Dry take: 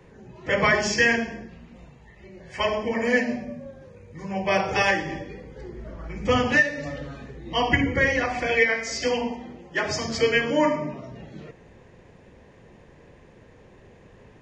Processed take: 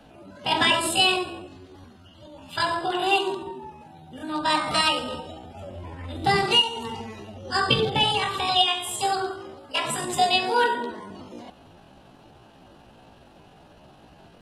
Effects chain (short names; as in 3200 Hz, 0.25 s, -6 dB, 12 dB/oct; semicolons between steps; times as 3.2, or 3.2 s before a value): rattling part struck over -28 dBFS, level -27 dBFS; pitch shift +8 st; attack slew limiter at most 520 dB/s